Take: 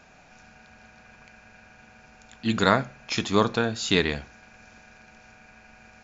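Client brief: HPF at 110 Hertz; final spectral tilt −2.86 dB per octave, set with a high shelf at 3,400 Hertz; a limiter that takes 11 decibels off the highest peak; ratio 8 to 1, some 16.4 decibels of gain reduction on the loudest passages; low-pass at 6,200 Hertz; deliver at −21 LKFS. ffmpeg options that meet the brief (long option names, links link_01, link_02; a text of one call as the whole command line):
ffmpeg -i in.wav -af "highpass=110,lowpass=6200,highshelf=frequency=3400:gain=8.5,acompressor=threshold=-31dB:ratio=8,volume=22dB,alimiter=limit=-5dB:level=0:latency=1" out.wav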